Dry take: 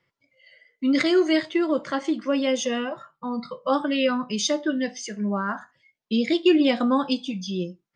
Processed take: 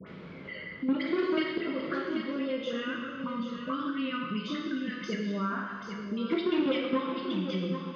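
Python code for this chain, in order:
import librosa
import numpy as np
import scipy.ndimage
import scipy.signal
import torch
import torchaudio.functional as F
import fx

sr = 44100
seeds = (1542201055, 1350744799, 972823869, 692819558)

y = fx.band_shelf(x, sr, hz=630.0, db=-15.0, octaves=1.3, at=(2.72, 5.07))
y = fx.level_steps(y, sr, step_db=19)
y = fx.dmg_noise_colour(y, sr, seeds[0], colour='brown', level_db=-57.0)
y = fx.dispersion(y, sr, late='highs', ms=73.0, hz=1300.0)
y = fx.tube_stage(y, sr, drive_db=22.0, bias=0.35)
y = fx.cabinet(y, sr, low_hz=160.0, low_slope=12, high_hz=3800.0, hz=(180.0, 430.0, 770.0, 1300.0), db=(9, 4, -10, 5))
y = y + 10.0 ** (-14.0 / 20.0) * np.pad(y, (int(786 * sr / 1000.0), 0))[:len(y)]
y = fx.rev_plate(y, sr, seeds[1], rt60_s=1.2, hf_ratio=0.95, predelay_ms=0, drr_db=0.0)
y = fx.band_squash(y, sr, depth_pct=70)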